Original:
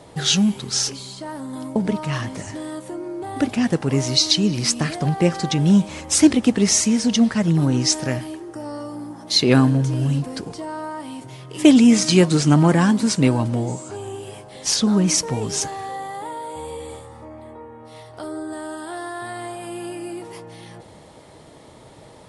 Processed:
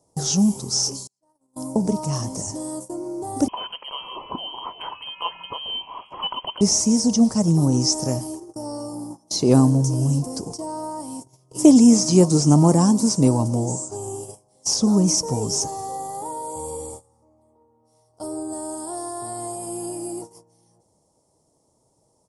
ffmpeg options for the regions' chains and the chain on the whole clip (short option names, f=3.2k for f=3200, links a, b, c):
-filter_complex "[0:a]asettb=1/sr,asplit=3[a][b][c];[a]atrim=end=1.074[d];[b]atrim=start=1.07:end=1.56,asetpts=PTS-STARTPTS,afade=t=in:d=0.004:c=qsin,afade=t=out:st=0.486:d=0.004:c=qsin,agate=range=-27dB:threshold=-30dB:ratio=16:release=100:detection=peak,bass=f=250:g=-6,treble=f=4k:g=-2[e];[c]atrim=start=1.556[f];[d][e]acrossfade=d=0.004:c1=hsin:c2=qsin[g];[g][f]acrossfade=d=0.004:c1=qsin:c2=hsin,asettb=1/sr,asplit=3[h][i][j];[h]atrim=end=3.484[k];[i]atrim=start=3.48:end=6.61,asetpts=PTS-STARTPTS,afade=t=in:d=0.004:c=qsin,afade=t=out:st=3.126:d=0.004:c=qsin,lowpass=f=2.8k:t=q:w=0.5098,lowpass=f=2.8k:t=q:w=0.6013,lowpass=f=2.8k:t=q:w=0.9,lowpass=f=2.8k:t=q:w=2.563,afreqshift=-3300,equalizer=f=1k:w=6.3:g=15[l];[j]atrim=start=6.606[m];[k][l]acrossfade=d=0.004:c1=hsin:c2=qsin[n];[n][m]acrossfade=d=0.004:c1=qsin:c2=hsin,acrossover=split=3700[o][p];[p]acompressor=threshold=-32dB:ratio=4:attack=1:release=60[q];[o][q]amix=inputs=2:normalize=0,agate=range=-21dB:threshold=-34dB:ratio=16:detection=peak,firequalizer=gain_entry='entry(960,0);entry(1600,-19);entry(3800,-12);entry(5400,10)':delay=0.05:min_phase=1"